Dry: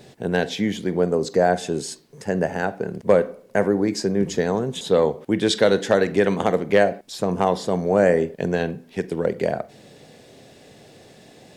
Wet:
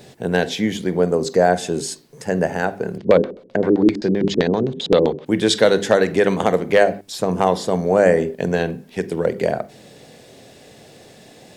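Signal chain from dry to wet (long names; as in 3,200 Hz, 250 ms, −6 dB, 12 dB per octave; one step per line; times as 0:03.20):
high-shelf EQ 7,900 Hz +4 dB
mains-hum notches 50/100/150/200/250/300/350/400 Hz
0:02.98–0:05.26: auto-filter low-pass square 7.7 Hz 330–3,800 Hz
level +3 dB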